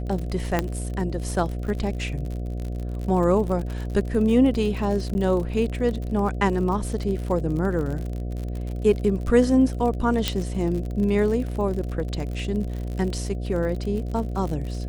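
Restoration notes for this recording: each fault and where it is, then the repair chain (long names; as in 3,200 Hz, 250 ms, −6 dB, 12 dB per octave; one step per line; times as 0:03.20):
mains buzz 60 Hz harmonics 12 −29 dBFS
surface crackle 53 per second −30 dBFS
0:00.59: click −8 dBFS
0:05.14–0:05.15: drop-out 10 ms
0:10.28: click −7 dBFS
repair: click removal
hum removal 60 Hz, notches 12
repair the gap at 0:05.14, 10 ms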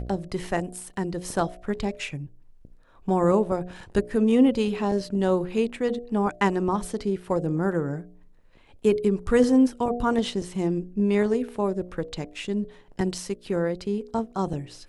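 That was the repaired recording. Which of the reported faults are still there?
none of them is left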